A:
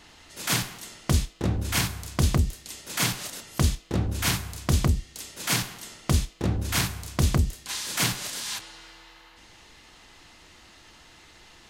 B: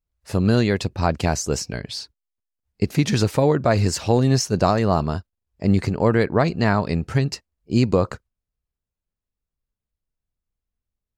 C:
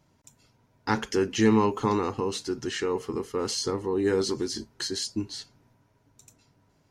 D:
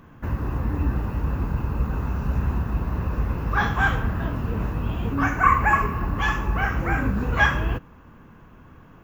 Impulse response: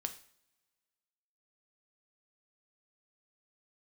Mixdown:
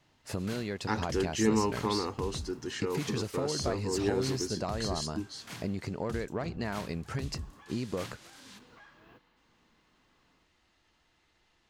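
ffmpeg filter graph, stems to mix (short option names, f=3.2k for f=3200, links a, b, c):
-filter_complex "[0:a]highshelf=f=6.6k:g=-10,volume=-17.5dB[a];[1:a]lowshelf=f=120:g=-7.5,volume=-4dB,asplit=2[b][c];[2:a]volume=-6dB[d];[3:a]highpass=210,acompressor=threshold=-34dB:ratio=2,alimiter=level_in=2.5dB:limit=-24dB:level=0:latency=1:release=335,volume=-2.5dB,adelay=1400,volume=-20dB[e];[c]apad=whole_len=460116[f];[e][f]sidechaincompress=threshold=-27dB:ratio=8:attack=48:release=593[g];[b][g]amix=inputs=2:normalize=0,asoftclip=type=tanh:threshold=-10.5dB,acompressor=threshold=-32dB:ratio=5,volume=0dB[h];[a][d][h]amix=inputs=3:normalize=0"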